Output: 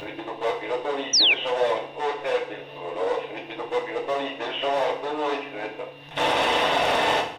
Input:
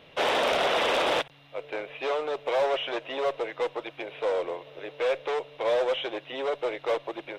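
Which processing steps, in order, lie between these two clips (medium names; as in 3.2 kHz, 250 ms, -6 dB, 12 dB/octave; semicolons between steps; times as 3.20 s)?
reverse the whole clip; comb 1.1 ms, depth 33%; upward compressor, threshold -34 dBFS; FDN reverb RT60 0.6 s, low-frequency decay 1.55×, high-frequency decay 0.9×, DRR 0 dB; painted sound fall, 1.13–1.34 s, 2.2–6.1 kHz -17 dBFS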